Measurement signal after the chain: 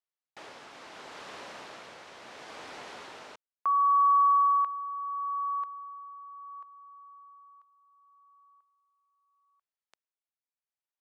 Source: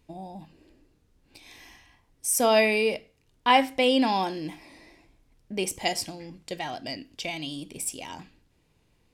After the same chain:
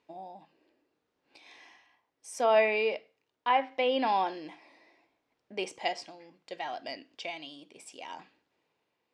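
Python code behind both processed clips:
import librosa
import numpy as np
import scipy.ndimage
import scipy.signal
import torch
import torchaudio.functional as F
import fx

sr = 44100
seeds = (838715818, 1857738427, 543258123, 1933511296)

y = fx.bandpass_edges(x, sr, low_hz=620.0, high_hz=5900.0)
y = fx.tilt_eq(y, sr, slope=-2.5)
y = fx.env_lowpass_down(y, sr, base_hz=2700.0, full_db=-20.5)
y = y * (1.0 - 0.44 / 2.0 + 0.44 / 2.0 * np.cos(2.0 * np.pi * 0.72 * (np.arange(len(y)) / sr)))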